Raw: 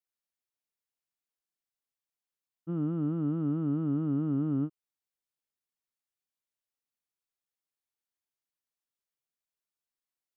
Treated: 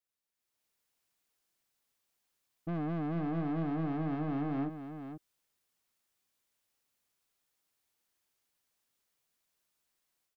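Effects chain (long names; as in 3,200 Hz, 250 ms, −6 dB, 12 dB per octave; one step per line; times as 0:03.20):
brickwall limiter −28 dBFS, peak gain reduction 6 dB
automatic gain control gain up to 11 dB
soft clipping −33 dBFS, distortion −7 dB
single-tap delay 481 ms −9 dB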